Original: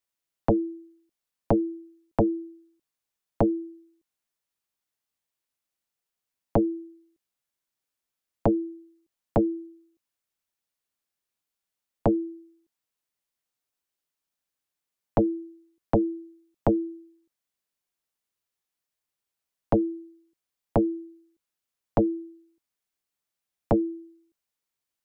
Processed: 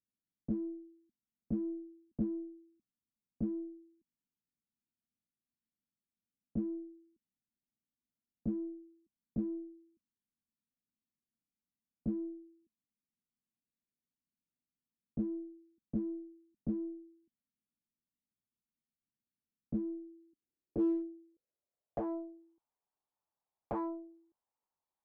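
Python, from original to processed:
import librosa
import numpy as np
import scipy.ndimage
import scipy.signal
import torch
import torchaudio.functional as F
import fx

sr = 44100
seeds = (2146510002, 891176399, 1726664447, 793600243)

p1 = fx.tube_stage(x, sr, drive_db=34.0, bias=0.5)
p2 = fx.filter_sweep_lowpass(p1, sr, from_hz=230.0, to_hz=910.0, start_s=20.0, end_s=22.42, q=3.5)
p3 = fx.clip_asym(p2, sr, top_db=-33.0, bottom_db=-25.5)
p4 = p2 + F.gain(torch.from_numpy(p3), -12.0).numpy()
p5 = fx.rider(p4, sr, range_db=4, speed_s=0.5)
y = F.gain(torch.from_numpy(p5), -2.0).numpy()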